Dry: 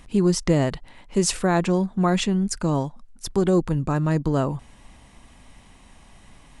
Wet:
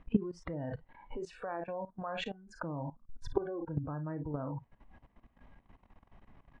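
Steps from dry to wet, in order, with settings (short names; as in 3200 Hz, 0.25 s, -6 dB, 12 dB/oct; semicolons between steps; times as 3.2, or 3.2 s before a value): LPF 1600 Hz 12 dB/oct; on a send: early reflections 35 ms -13 dB, 53 ms -14 dB; on the sum: compressor 4:1, threshold -35 dBFS, peak gain reduction 17.5 dB; spectral noise reduction 19 dB; level quantiser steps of 17 dB; gain +13 dB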